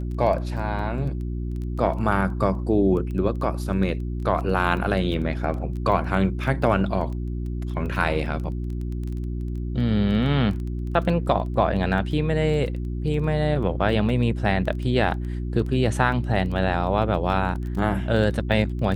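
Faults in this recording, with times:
surface crackle 12 per second −31 dBFS
mains hum 60 Hz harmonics 6 −28 dBFS

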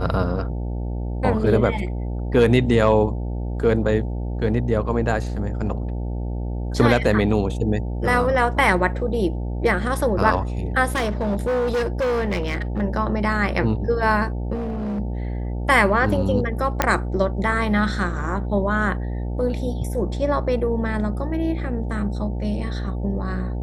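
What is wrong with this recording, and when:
mains buzz 60 Hz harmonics 15 −26 dBFS
0:10.92–0:12.82: clipping −18.5 dBFS
0:14.54–0:15.00: clipping −23.5 dBFS
0:16.82: click −3 dBFS

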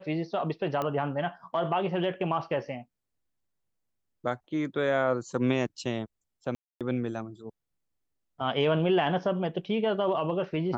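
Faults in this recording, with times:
0:00.82: click −18 dBFS
0:06.55–0:06.81: drop-out 257 ms

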